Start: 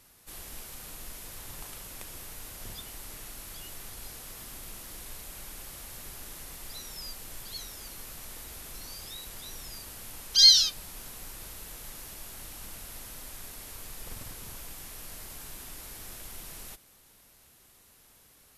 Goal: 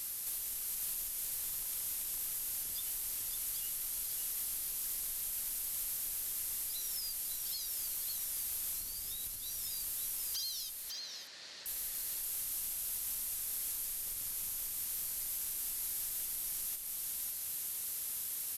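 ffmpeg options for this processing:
ffmpeg -i in.wav -filter_complex "[0:a]asettb=1/sr,asplit=3[link_01][link_02][link_03];[link_01]atrim=end=8.804[link_04];[link_02]atrim=start=8.8:end=9.37,asetpts=PTS-STARTPTS,afade=type=in:duration=0.004:curve=qsin,afade=type=out:start_time=0.566:duration=0.004:curve=qsin,lowshelf=frequency=380:gain=11.5[link_05];[link_03]atrim=start=9.366[link_06];[link_04][link_05]acrossfade=duration=0.004:curve1=hsin:curve2=qsin[link_07];[link_07][link_06]acrossfade=duration=0.004:curve1=qsin:curve2=hsin,acompressor=threshold=-53dB:ratio=16,crystalizer=i=6.5:c=0,aeval=exprs='0.0562*sin(PI/2*2*val(0)/0.0562)':channel_layout=same,asettb=1/sr,asplit=3[link_08][link_09][link_10];[link_08]atrim=end=10.724[link_11];[link_09]atrim=start=10.72:end=11.66,asetpts=PTS-STARTPTS,afade=type=in:duration=0.004:curve=qsin,afade=type=out:start_time=0.936:duration=0.004:curve=qsin,highpass=200,equalizer=frequency=580:width_type=q:width=4:gain=7,equalizer=frequency=1800:width_type=q:width=4:gain=8,equalizer=frequency=4300:width_type=q:width=4:gain=7,lowpass=frequency=5200:width=0.5412,lowpass=frequency=5200:width=1.3066[link_12];[link_10]atrim=start=11.656[link_13];[link_11][link_12]acrossfade=duration=0.004:curve1=hsin:curve2=qsin[link_14];[link_14][link_13]acrossfade=duration=0.004:curve1=qsin:curve2=hsin,asplit=2[link_15][link_16];[link_16]aecho=0:1:552:0.596[link_17];[link_15][link_17]amix=inputs=2:normalize=0,volume=-8.5dB" out.wav

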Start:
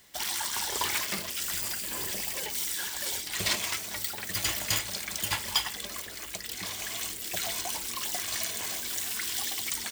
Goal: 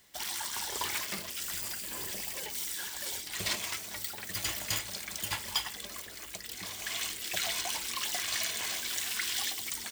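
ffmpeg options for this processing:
ffmpeg -i in.wav -filter_complex "[0:a]asettb=1/sr,asplit=3[link_01][link_02][link_03];[link_01]atrim=end=6.864[link_04];[link_02]atrim=start=6.86:end=9.52,asetpts=PTS-STARTPTS,afade=type=in:duration=0.004:curve=qsin,afade=type=out:start_time=2.656:duration=0.004:curve=qsin,equalizer=frequency=2500:width_type=o:width=2.9:gain=7[link_05];[link_03]atrim=start=9.516[link_06];[link_04][link_05]acrossfade=duration=0.004:curve1=hsin:curve2=qsin[link_07];[link_07][link_06]acrossfade=duration=0.004:curve1=qsin:curve2=hsin,volume=-4.5dB" out.wav

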